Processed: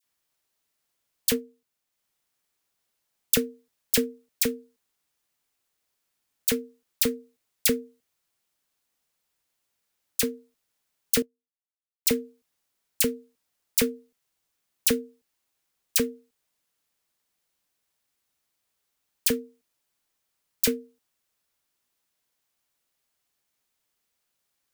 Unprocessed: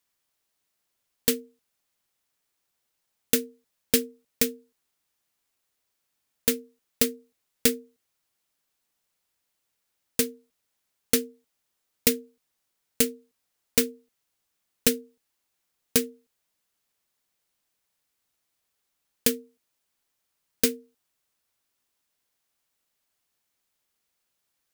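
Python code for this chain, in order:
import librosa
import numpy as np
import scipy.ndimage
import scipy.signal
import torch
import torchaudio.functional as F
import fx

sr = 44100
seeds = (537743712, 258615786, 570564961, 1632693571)

y = fx.transient(x, sr, attack_db=3, sustain_db=-4, at=(1.3, 3.34))
y = fx.dispersion(y, sr, late='lows', ms=41.0, hz=1800.0)
y = fx.upward_expand(y, sr, threshold_db=-39.0, expansion=2.5, at=(11.22, 12.1))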